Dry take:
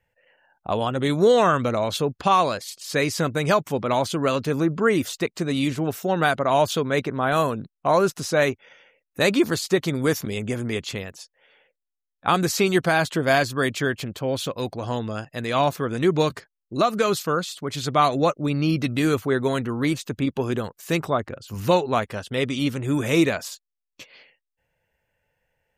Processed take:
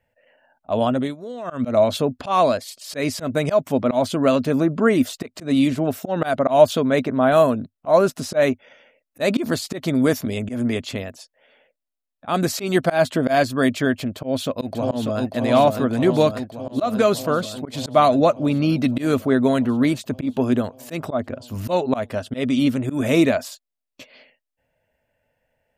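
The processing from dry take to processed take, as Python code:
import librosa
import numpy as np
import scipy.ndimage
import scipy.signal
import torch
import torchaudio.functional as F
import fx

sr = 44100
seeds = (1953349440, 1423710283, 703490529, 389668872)

y = fx.echo_throw(x, sr, start_s=14.03, length_s=1.18, ms=590, feedback_pct=75, wet_db=-5.0)
y = fx.edit(y, sr, fx.fade_down_up(start_s=0.92, length_s=0.76, db=-20.5, fade_s=0.24), tone=tone)
y = fx.graphic_eq_31(y, sr, hz=(100, 250, 630, 6300), db=(3, 12, 11, -3))
y = fx.auto_swell(y, sr, attack_ms=123.0)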